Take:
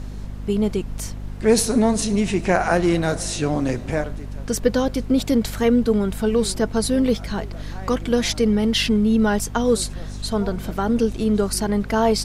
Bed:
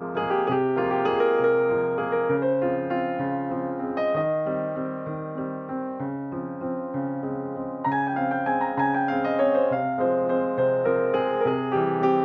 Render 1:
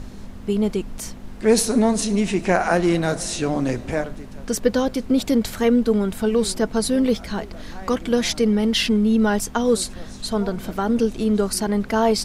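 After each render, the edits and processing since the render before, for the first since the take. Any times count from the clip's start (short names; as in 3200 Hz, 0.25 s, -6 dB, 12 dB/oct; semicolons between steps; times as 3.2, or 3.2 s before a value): notches 50/100/150 Hz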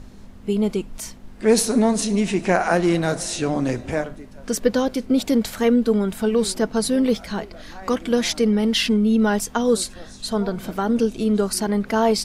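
noise print and reduce 6 dB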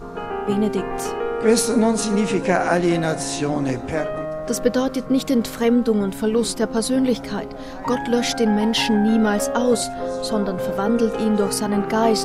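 add bed -3.5 dB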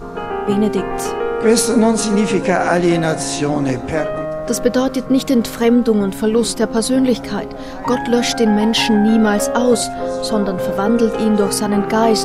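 gain +4.5 dB; limiter -2 dBFS, peak gain reduction 2.5 dB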